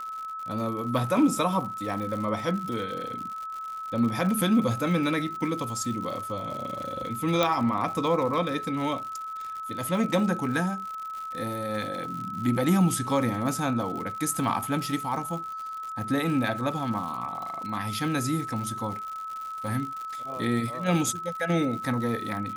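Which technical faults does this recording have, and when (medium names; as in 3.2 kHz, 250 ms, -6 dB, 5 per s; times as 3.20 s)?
crackle 110 per s -34 dBFS
whine 1.3 kHz -33 dBFS
7.43 s: pop -10 dBFS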